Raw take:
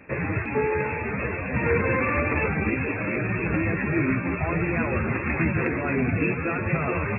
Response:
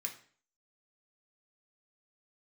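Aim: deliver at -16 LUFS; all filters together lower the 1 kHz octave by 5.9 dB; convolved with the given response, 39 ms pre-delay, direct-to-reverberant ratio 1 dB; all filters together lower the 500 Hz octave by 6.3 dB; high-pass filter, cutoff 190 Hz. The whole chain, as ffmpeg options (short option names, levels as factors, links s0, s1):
-filter_complex "[0:a]highpass=190,equalizer=f=500:t=o:g=-6.5,equalizer=f=1000:t=o:g=-6,asplit=2[s0][s1];[1:a]atrim=start_sample=2205,adelay=39[s2];[s1][s2]afir=irnorm=-1:irlink=0,volume=1[s3];[s0][s3]amix=inputs=2:normalize=0,volume=3.16"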